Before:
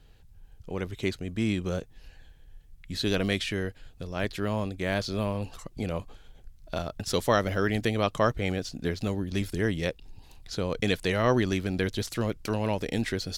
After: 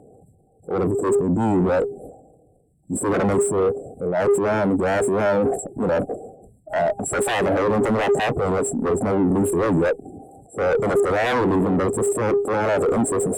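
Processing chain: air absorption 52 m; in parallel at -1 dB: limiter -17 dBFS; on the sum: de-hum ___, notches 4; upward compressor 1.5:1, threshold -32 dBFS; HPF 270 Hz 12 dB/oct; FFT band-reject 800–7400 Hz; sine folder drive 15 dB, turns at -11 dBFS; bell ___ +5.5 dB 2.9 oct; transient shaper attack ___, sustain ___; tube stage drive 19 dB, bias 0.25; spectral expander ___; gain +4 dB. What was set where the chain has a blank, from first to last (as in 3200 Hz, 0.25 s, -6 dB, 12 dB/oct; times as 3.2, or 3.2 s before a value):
404.6 Hz, 4600 Hz, -7 dB, +10 dB, 1.5:1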